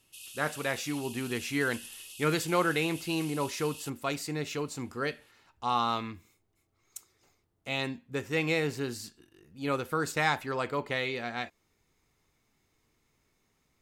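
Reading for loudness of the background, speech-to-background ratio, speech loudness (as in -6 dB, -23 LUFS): -44.0 LUFS, 12.0 dB, -32.0 LUFS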